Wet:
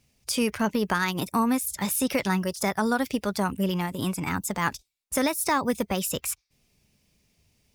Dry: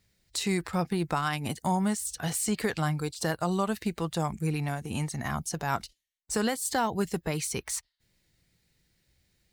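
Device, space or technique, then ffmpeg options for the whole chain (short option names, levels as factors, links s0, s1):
nightcore: -af "asetrate=54243,aresample=44100,volume=1.5"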